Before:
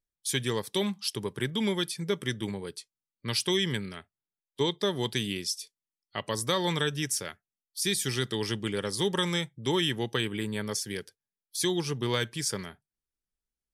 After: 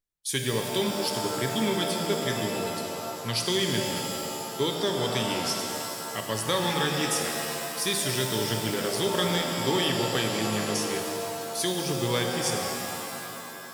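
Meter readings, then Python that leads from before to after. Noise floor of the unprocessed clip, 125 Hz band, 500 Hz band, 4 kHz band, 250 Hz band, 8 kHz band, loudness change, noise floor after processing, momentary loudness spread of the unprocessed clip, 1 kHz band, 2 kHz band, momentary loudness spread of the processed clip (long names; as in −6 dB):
below −85 dBFS, +1.5 dB, +4.0 dB, +3.0 dB, +2.0 dB, +4.0 dB, +2.5 dB, −38 dBFS, 11 LU, +7.5 dB, +3.5 dB, 7 LU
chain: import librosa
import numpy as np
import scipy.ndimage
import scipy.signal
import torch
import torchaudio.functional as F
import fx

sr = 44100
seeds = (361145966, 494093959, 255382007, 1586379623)

y = fx.hum_notches(x, sr, base_hz=50, count=4)
y = fx.rev_shimmer(y, sr, seeds[0], rt60_s=2.9, semitones=7, shimmer_db=-2, drr_db=2.5)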